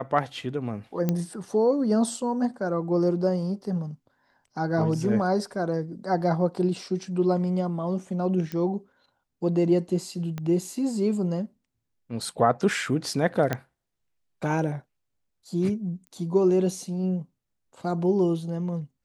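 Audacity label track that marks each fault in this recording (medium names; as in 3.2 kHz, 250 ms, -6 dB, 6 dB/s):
1.090000	1.090000	pop -12 dBFS
8.520000	8.520000	pop -19 dBFS
10.380000	10.380000	pop -20 dBFS
13.530000	13.530000	pop -12 dBFS
16.070000	16.070000	pop -32 dBFS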